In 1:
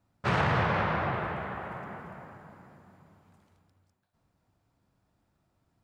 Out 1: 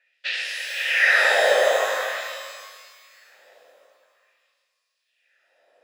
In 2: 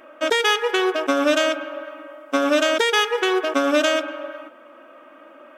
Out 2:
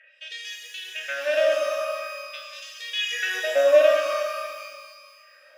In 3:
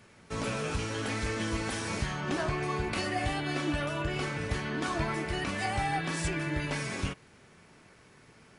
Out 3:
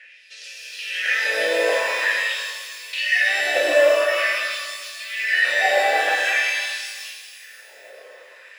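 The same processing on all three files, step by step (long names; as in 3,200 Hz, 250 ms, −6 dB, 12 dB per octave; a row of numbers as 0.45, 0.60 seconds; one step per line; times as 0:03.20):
formant filter e
auto-filter high-pass sine 0.47 Hz 610–5,300 Hz
reverb with rising layers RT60 1.7 s, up +12 semitones, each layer −8 dB, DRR 1.5 dB
normalise the peak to −6 dBFS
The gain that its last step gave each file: +26.0, +4.5, +22.0 decibels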